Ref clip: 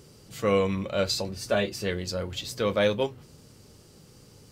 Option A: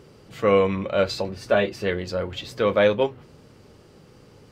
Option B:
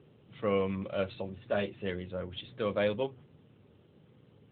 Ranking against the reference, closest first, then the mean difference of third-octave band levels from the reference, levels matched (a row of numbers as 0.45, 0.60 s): A, B; 3.5, 5.5 dB